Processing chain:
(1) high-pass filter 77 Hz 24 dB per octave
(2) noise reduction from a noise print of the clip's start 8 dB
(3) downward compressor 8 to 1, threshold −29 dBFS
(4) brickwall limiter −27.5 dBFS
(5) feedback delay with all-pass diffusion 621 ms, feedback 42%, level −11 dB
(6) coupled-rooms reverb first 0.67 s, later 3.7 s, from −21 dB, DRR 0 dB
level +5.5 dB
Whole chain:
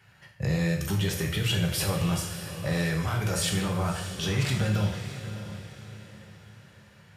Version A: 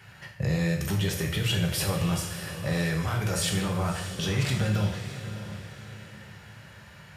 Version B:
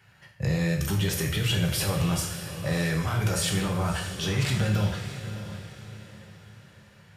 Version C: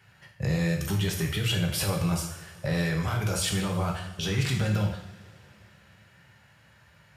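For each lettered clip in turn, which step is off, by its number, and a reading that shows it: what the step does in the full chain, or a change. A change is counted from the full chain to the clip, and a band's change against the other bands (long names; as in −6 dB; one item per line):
2, change in momentary loudness spread +5 LU
3, average gain reduction 10.0 dB
5, change in momentary loudness spread −8 LU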